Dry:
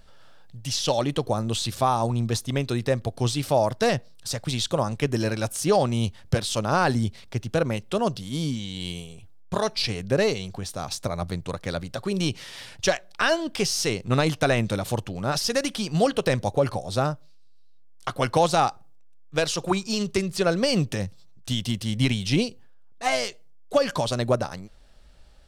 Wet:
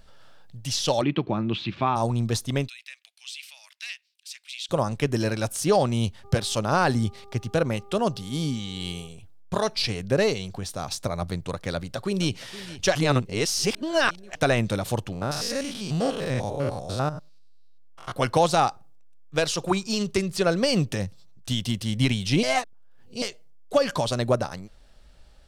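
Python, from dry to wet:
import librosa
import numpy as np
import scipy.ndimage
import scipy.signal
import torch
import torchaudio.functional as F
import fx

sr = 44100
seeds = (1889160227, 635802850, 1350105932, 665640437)

y = fx.cabinet(x, sr, low_hz=110.0, low_slope=12, high_hz=3300.0, hz=(190.0, 330.0, 500.0, 720.0, 2400.0), db=(7, 7, -9, -5, 8), at=(1.01, 1.95), fade=0.02)
y = fx.ladder_highpass(y, sr, hz=2200.0, resonance_pct=60, at=(2.67, 4.68), fade=0.02)
y = fx.dmg_buzz(y, sr, base_hz=400.0, harmonics=3, level_db=-51.0, tilt_db=-4, odd_only=False, at=(6.23, 9.07), fade=0.02)
y = fx.echo_throw(y, sr, start_s=11.74, length_s=0.67, ms=470, feedback_pct=50, wet_db=-16.0)
y = fx.spec_steps(y, sr, hold_ms=100, at=(15.12, 18.12))
y = fx.edit(y, sr, fx.reverse_span(start_s=12.95, length_s=1.4),
    fx.reverse_span(start_s=22.43, length_s=0.79), tone=tone)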